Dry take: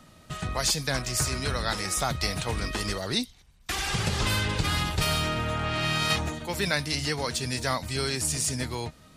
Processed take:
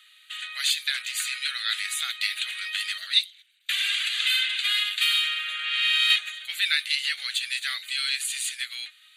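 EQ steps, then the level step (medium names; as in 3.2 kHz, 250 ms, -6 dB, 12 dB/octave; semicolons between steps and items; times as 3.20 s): high-pass 1.3 kHz 24 dB/octave; peaking EQ 3.8 kHz +14.5 dB 1.3 oct; static phaser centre 2.3 kHz, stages 4; 0.0 dB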